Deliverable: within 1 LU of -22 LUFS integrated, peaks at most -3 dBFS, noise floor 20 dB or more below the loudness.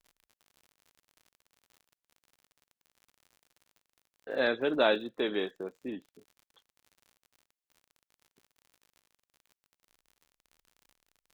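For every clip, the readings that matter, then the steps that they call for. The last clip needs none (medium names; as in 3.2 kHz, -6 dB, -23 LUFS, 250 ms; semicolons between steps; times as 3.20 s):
tick rate 57 per s; loudness -31.0 LUFS; peak level -12.0 dBFS; loudness target -22.0 LUFS
-> de-click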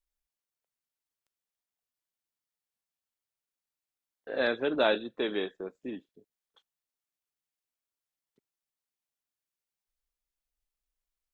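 tick rate 0.088 per s; loudness -31.0 LUFS; peak level -12.5 dBFS; loudness target -22.0 LUFS
-> trim +9 dB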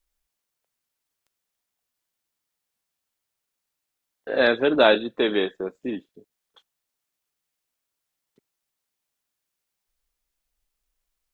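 loudness -22.0 LUFS; peak level -3.5 dBFS; noise floor -83 dBFS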